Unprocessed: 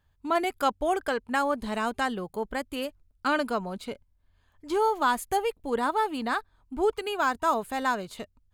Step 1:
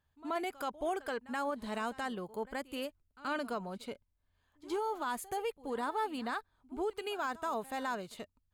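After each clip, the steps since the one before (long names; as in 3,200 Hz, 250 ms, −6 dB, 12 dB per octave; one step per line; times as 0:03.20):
low-shelf EQ 72 Hz −8 dB
brickwall limiter −20.5 dBFS, peak gain reduction 8 dB
echo ahead of the sound 78 ms −19 dB
level −6.5 dB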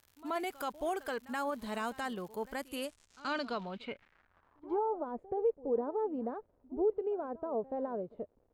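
surface crackle 230 per second −49 dBFS
low-pass filter sweep 15,000 Hz → 520 Hz, 0:02.53–0:05.08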